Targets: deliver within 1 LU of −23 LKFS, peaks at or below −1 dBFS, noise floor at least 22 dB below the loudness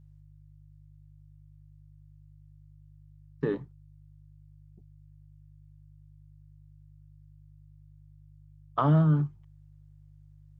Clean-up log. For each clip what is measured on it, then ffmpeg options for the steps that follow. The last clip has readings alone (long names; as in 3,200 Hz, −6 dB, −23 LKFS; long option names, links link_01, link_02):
mains hum 50 Hz; hum harmonics up to 150 Hz; level of the hum −51 dBFS; integrated loudness −27.0 LKFS; sample peak −14.0 dBFS; target loudness −23.0 LKFS
→ -af "bandreject=frequency=50:width_type=h:width=4,bandreject=frequency=100:width_type=h:width=4,bandreject=frequency=150:width_type=h:width=4"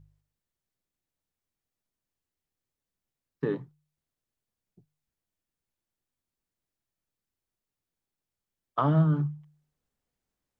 mains hum none found; integrated loudness −28.0 LKFS; sample peak −13.5 dBFS; target loudness −23.0 LKFS
→ -af "volume=5dB"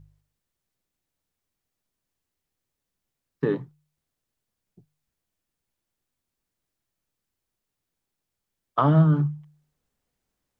integrated loudness −23.0 LKFS; sample peak −8.5 dBFS; background noise floor −84 dBFS